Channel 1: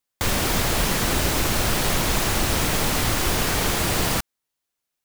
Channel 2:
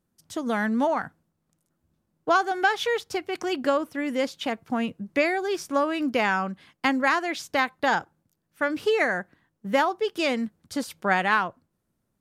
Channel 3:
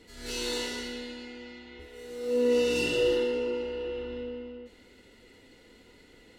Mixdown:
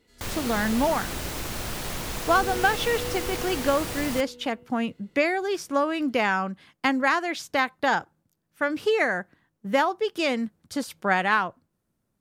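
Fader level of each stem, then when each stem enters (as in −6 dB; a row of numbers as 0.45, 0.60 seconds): −10.5, 0.0, −10.0 decibels; 0.00, 0.00, 0.00 seconds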